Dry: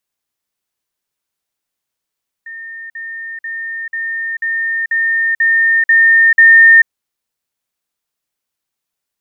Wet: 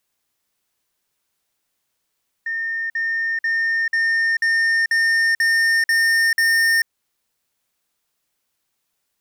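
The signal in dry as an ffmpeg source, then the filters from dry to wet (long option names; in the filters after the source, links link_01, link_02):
-f lavfi -i "aevalsrc='pow(10,(-26.5+3*floor(t/0.49))/20)*sin(2*PI*1820*t)*clip(min(mod(t,0.49),0.44-mod(t,0.49))/0.005,0,1)':duration=4.41:sample_rate=44100"
-filter_complex "[0:a]asplit=2[link_01][link_02];[link_02]acompressor=threshold=-17dB:ratio=6,volume=-0.5dB[link_03];[link_01][link_03]amix=inputs=2:normalize=0,asoftclip=type=tanh:threshold=-16dB"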